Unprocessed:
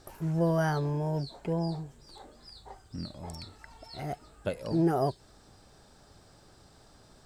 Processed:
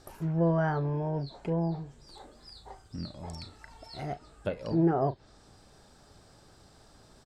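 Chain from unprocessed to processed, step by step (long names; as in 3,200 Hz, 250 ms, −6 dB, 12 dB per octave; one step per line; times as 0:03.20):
treble cut that deepens with the level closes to 2,100 Hz, closed at −26.5 dBFS
double-tracking delay 36 ms −14 dB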